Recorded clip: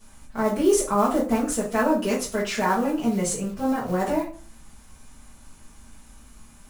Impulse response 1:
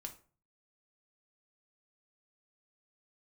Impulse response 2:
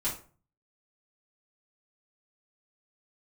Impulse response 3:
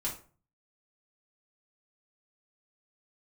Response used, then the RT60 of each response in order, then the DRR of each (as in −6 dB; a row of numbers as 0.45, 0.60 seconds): 2; 0.40, 0.40, 0.40 seconds; 3.5, −10.0, −5.0 decibels